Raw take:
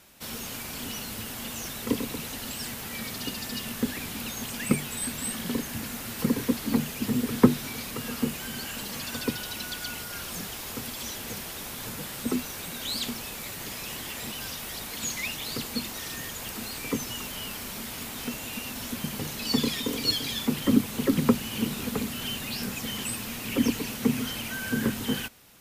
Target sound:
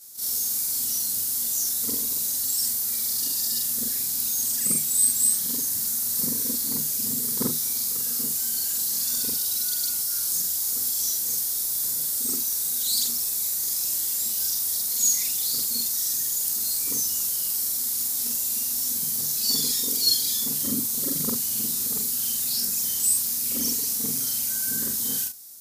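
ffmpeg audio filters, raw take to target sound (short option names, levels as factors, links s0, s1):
-af "afftfilt=real='re':imag='-im':win_size=4096:overlap=0.75,aexciter=amount=11.6:drive=5.7:freq=4200,volume=0.501"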